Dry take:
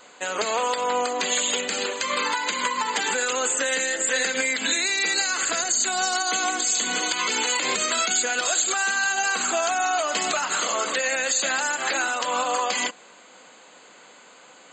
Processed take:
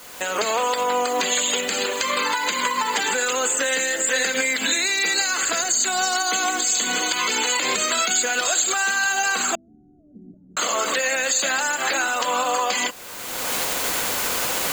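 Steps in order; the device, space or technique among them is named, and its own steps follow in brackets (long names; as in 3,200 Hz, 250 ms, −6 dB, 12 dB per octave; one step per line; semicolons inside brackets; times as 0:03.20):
cheap recorder with automatic gain (white noise bed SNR 22 dB; camcorder AGC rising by 29 dB per second)
0:09.55–0:10.57: inverse Chebyshev low-pass filter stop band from 1,000 Hz, stop band 70 dB
level +2 dB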